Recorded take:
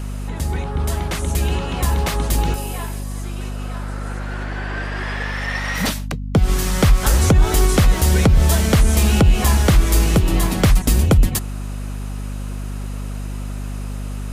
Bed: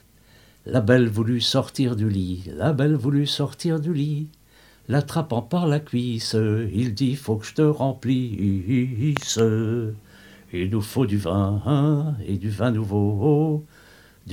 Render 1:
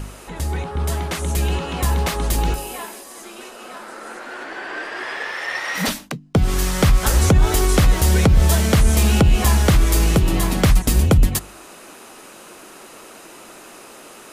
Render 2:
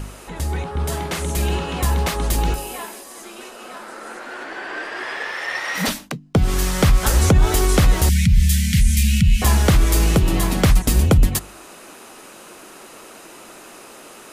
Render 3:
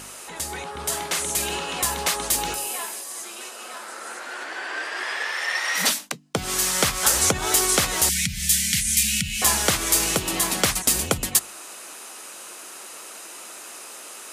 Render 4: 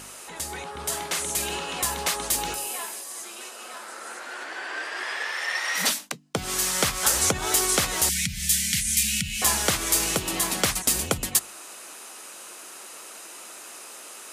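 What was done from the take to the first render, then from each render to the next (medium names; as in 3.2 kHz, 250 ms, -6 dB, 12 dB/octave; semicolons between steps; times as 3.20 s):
de-hum 50 Hz, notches 6
0.80–1.79 s: doubling 48 ms -8.5 dB; 8.09–9.42 s: elliptic band-stop 200–2000 Hz
high-pass 720 Hz 6 dB/octave; peaking EQ 8.3 kHz +7 dB 1.7 oct
trim -2.5 dB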